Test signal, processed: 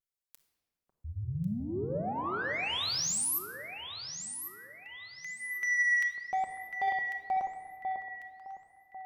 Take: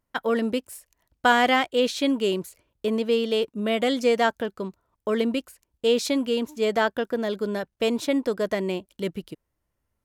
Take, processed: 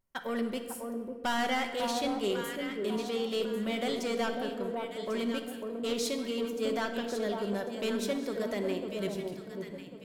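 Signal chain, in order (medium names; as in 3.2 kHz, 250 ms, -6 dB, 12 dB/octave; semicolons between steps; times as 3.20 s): treble shelf 4.7 kHz +6.5 dB; vibrato 0.62 Hz 31 cents; echo whose repeats swap between lows and highs 548 ms, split 1.1 kHz, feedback 55%, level -5 dB; saturation -17 dBFS; simulated room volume 2100 m³, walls mixed, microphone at 1.1 m; trim -8.5 dB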